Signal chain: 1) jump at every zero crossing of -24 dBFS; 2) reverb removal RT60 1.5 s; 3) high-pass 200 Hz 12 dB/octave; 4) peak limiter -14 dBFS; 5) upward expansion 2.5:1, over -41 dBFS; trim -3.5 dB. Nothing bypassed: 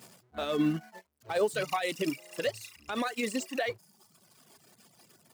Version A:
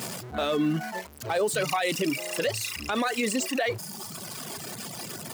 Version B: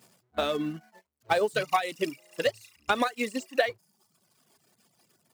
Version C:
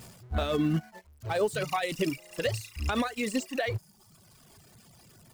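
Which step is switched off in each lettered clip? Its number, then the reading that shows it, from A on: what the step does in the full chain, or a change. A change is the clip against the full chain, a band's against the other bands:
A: 5, 8 kHz band +6.0 dB; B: 4, crest factor change +5.5 dB; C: 3, 125 Hz band +8.5 dB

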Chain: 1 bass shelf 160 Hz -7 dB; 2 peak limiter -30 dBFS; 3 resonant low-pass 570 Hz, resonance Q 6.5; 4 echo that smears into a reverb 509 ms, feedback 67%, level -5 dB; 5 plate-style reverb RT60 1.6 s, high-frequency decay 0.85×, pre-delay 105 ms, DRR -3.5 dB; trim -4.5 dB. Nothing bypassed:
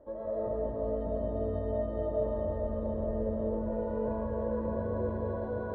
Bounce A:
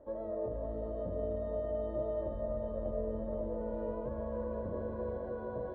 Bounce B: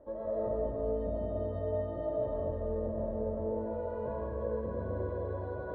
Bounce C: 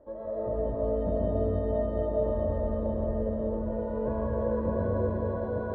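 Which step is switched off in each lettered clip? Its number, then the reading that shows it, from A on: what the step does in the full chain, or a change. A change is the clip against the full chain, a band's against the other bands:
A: 5, echo-to-direct 6.0 dB to -2.5 dB; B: 4, echo-to-direct 6.0 dB to 3.5 dB; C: 2, mean gain reduction 3.0 dB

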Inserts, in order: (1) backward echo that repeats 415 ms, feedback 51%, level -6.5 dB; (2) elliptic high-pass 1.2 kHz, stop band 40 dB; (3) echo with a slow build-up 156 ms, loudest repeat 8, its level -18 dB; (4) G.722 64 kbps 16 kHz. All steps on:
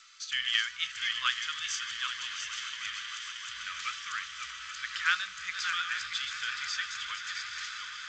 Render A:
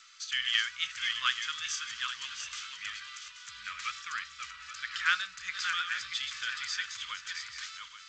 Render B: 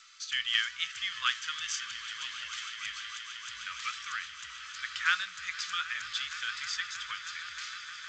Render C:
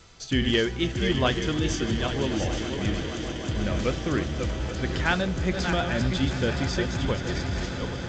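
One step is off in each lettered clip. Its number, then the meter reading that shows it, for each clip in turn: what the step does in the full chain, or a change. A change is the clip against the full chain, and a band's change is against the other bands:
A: 3, momentary loudness spread change +4 LU; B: 1, momentary loudness spread change +1 LU; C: 2, 1 kHz band +5.0 dB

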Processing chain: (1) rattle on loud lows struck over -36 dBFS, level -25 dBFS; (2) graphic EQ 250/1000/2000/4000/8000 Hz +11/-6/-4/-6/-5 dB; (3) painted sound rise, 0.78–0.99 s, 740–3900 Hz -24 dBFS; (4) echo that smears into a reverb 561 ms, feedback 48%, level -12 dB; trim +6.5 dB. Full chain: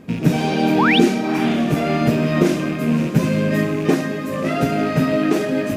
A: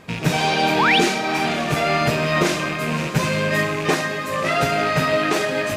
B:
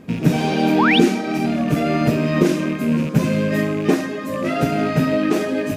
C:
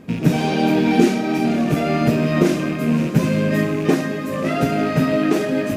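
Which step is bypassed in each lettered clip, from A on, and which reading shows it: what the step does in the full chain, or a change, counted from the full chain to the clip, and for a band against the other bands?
2, crest factor change -2.0 dB; 4, echo-to-direct -11.0 dB to none; 3, 4 kHz band -4.0 dB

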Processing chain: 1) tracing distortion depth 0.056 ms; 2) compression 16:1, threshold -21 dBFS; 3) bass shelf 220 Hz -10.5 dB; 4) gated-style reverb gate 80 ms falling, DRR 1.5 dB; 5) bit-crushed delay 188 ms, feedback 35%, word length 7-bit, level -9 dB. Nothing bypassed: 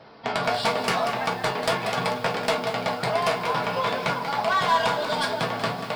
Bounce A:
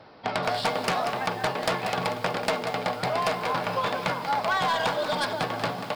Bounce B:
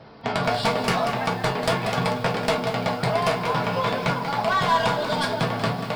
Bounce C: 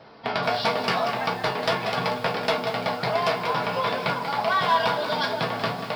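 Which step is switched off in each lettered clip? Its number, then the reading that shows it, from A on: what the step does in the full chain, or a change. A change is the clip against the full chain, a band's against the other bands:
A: 4, loudness change -2.5 LU; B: 3, 125 Hz band +7.0 dB; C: 1, 8 kHz band -6.5 dB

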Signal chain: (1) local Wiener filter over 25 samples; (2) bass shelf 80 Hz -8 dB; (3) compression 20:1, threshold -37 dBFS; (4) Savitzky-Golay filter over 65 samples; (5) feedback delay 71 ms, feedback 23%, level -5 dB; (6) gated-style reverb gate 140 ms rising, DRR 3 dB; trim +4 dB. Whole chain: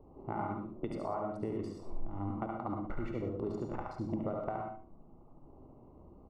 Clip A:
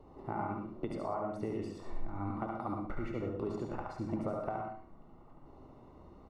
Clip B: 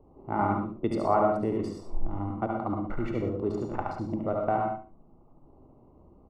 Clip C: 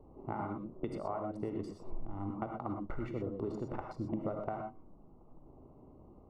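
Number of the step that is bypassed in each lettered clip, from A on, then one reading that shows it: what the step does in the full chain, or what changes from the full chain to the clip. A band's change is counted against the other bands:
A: 1, 2 kHz band +2.0 dB; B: 3, mean gain reduction 5.5 dB; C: 5, echo-to-direct 0.0 dB to -3.0 dB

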